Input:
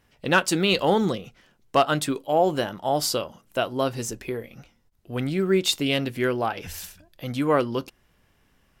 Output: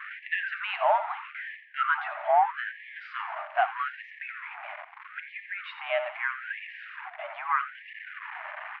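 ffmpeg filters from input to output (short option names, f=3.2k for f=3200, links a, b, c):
-filter_complex "[0:a]aeval=exprs='val(0)+0.5*0.0473*sgn(val(0))':c=same,asplit=3[a][b][c];[a]afade=t=out:st=2.95:d=0.02[d];[b]acrusher=bits=2:mode=log:mix=0:aa=0.000001,afade=t=in:st=2.95:d=0.02,afade=t=out:st=4.3:d=0.02[e];[c]afade=t=in:st=4.3:d=0.02[f];[d][e][f]amix=inputs=3:normalize=0,highpass=f=210:t=q:w=0.5412,highpass=f=210:t=q:w=1.307,lowpass=f=2.2k:t=q:w=0.5176,lowpass=f=2.2k:t=q:w=0.7071,lowpass=f=2.2k:t=q:w=1.932,afreqshift=67,aecho=1:1:86|172|258|344|430:0.251|0.126|0.0628|0.0314|0.0157,afftfilt=real='re*gte(b*sr/1024,570*pow(1700/570,0.5+0.5*sin(2*PI*0.79*pts/sr)))':imag='im*gte(b*sr/1024,570*pow(1700/570,0.5+0.5*sin(2*PI*0.79*pts/sr)))':win_size=1024:overlap=0.75"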